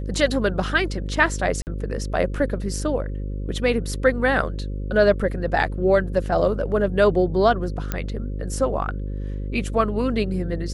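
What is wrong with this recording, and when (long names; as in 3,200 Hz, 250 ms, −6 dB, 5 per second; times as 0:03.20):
mains buzz 50 Hz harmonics 11 −28 dBFS
0:01.62–0:01.67: drop-out 49 ms
0:07.92: click −10 dBFS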